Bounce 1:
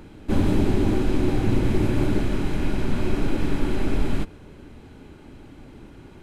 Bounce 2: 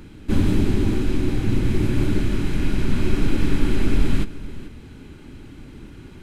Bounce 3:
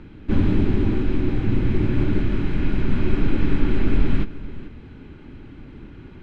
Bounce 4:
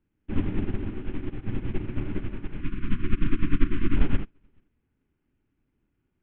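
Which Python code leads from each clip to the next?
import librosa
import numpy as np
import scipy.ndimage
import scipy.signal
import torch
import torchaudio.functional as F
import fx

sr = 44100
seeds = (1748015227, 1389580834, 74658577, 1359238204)

y1 = fx.peak_eq(x, sr, hz=680.0, db=-9.5, octaves=1.4)
y1 = fx.rider(y1, sr, range_db=10, speed_s=2.0)
y1 = y1 + 10.0 ** (-16.5 / 20.0) * np.pad(y1, (int(435 * sr / 1000.0), 0))[:len(y1)]
y1 = y1 * librosa.db_to_amplitude(2.5)
y2 = scipy.signal.sosfilt(scipy.signal.butter(2, 2800.0, 'lowpass', fs=sr, output='sos'), y1)
y3 = fx.cvsd(y2, sr, bps=16000)
y3 = fx.spec_erase(y3, sr, start_s=2.61, length_s=1.35, low_hz=380.0, high_hz=990.0)
y3 = fx.upward_expand(y3, sr, threshold_db=-33.0, expansion=2.5)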